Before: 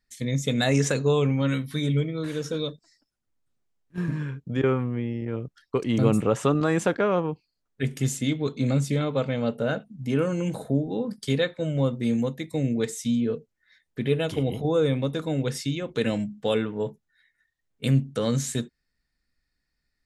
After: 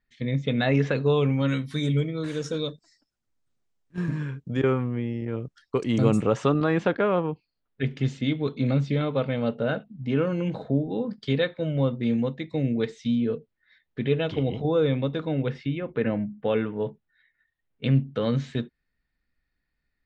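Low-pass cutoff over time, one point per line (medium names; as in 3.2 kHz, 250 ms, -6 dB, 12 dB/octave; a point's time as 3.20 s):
low-pass 24 dB/octave
0.92 s 3.4 kHz
1.74 s 8.7 kHz
6.12 s 8.7 kHz
6.67 s 4.1 kHz
15.05 s 4.1 kHz
16.21 s 2 kHz
16.82 s 3.6 kHz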